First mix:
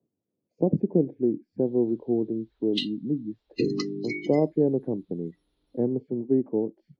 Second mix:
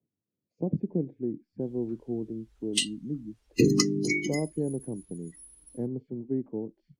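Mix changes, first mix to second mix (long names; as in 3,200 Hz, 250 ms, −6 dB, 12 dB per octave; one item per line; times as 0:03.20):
background: remove transistor ladder low-pass 4,200 Hz, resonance 70%
master: add parametric band 540 Hz −10 dB 2.8 octaves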